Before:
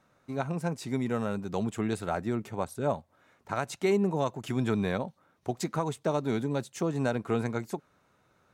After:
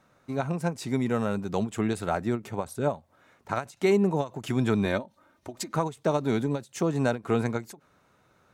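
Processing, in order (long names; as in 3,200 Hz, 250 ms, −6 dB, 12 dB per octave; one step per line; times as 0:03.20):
0:04.85–0:05.73: comb filter 3.3 ms, depth 58%
every ending faded ahead of time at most 260 dB per second
level +3.5 dB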